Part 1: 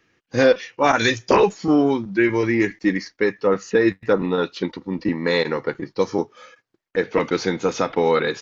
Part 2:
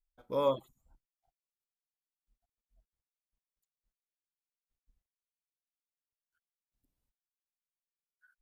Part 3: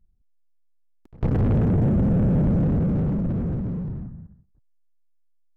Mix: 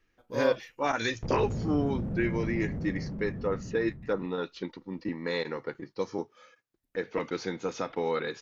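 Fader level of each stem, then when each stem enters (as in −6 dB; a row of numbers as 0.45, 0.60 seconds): −11.5, −2.5, −13.5 decibels; 0.00, 0.00, 0.00 seconds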